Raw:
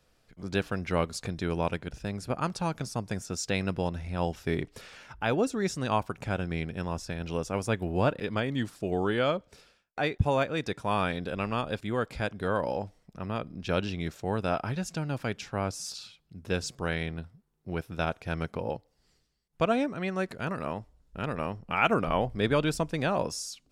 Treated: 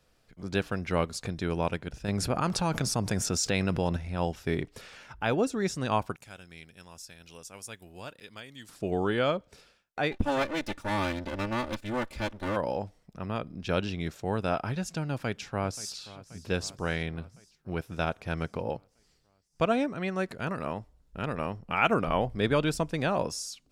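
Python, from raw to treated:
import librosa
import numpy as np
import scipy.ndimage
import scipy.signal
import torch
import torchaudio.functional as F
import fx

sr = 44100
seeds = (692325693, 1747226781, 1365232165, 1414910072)

y = fx.env_flatten(x, sr, amount_pct=70, at=(2.08, 3.97))
y = fx.pre_emphasis(y, sr, coefficient=0.9, at=(6.16, 8.69))
y = fx.lower_of_two(y, sr, delay_ms=3.4, at=(10.11, 12.55), fade=0.02)
y = fx.echo_throw(y, sr, start_s=15.09, length_s=0.87, ms=530, feedback_pct=65, wet_db=-17.5)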